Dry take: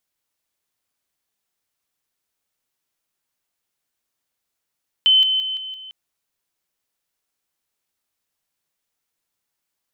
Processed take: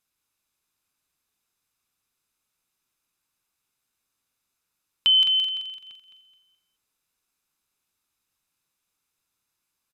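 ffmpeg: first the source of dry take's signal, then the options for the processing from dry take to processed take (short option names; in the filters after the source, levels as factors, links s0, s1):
-f lavfi -i "aevalsrc='pow(10,(-10.5-6*floor(t/0.17))/20)*sin(2*PI*3060*t)':d=0.85:s=44100"
-filter_complex "[0:a]aecho=1:1:0.8:0.38,asplit=2[s0][s1];[s1]aecho=0:1:213|426|639|852:0.376|0.117|0.0361|0.0112[s2];[s0][s2]amix=inputs=2:normalize=0,aresample=32000,aresample=44100"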